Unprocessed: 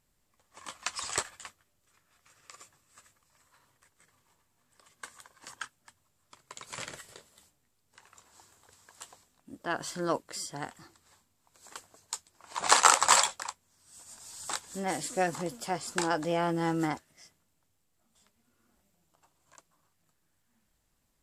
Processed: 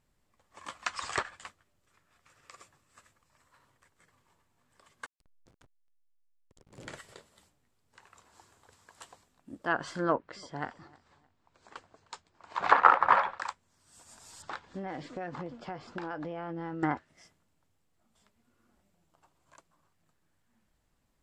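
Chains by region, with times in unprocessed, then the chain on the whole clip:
5.06–6.88 s: FFT filter 220 Hz 0 dB, 350 Hz +4 dB, 1.4 kHz -24 dB, 11 kHz 0 dB + transient shaper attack -4 dB, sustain +7 dB + hysteresis with a dead band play -42 dBFS
10.12–13.39 s: distance through air 120 m + feedback delay 308 ms, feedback 32%, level -22.5 dB
14.42–16.83 s: distance through air 210 m + compression 10:1, threshold -35 dBFS
whole clip: treble shelf 4.2 kHz -9.5 dB; low-pass that closes with the level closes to 1.7 kHz, closed at -26 dBFS; dynamic bell 1.5 kHz, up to +5 dB, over -47 dBFS, Q 1.5; trim +1.5 dB

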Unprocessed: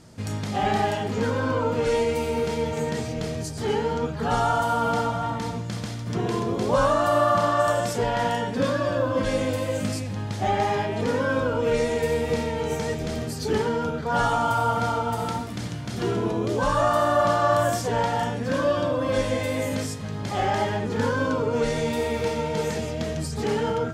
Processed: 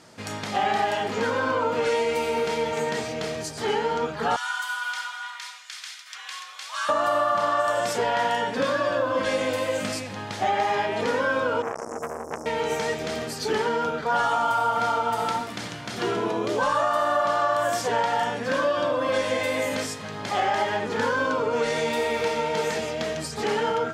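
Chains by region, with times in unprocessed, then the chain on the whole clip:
4.36–6.89 s: Bessel high-pass 2 kHz, order 4 + frequency shift +60 Hz
11.62–12.46 s: brick-wall FIR band-stop 470–5200 Hz + transformer saturation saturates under 1.2 kHz
whole clip: high-pass 870 Hz 6 dB/octave; treble shelf 4.8 kHz -8.5 dB; compression, threshold -27 dBFS; trim +7.5 dB

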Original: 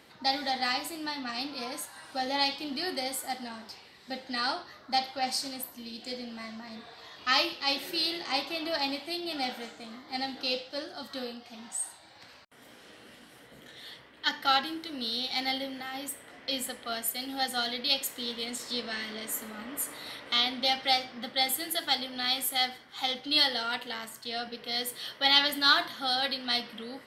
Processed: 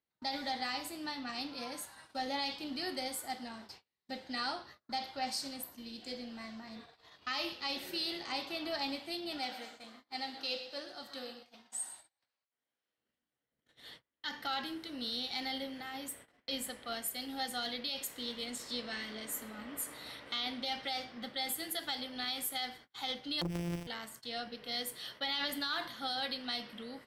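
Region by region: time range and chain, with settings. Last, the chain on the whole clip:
9.38–12.98 s: bass shelf 280 Hz -11 dB + feedback delay 121 ms, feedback 39%, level -12 dB
23.41–23.87 s: sorted samples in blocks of 256 samples + doubling 41 ms -8 dB + transformer saturation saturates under 880 Hz
whole clip: gate -47 dBFS, range -33 dB; bass shelf 100 Hz +8.5 dB; peak limiter -20.5 dBFS; trim -5.5 dB

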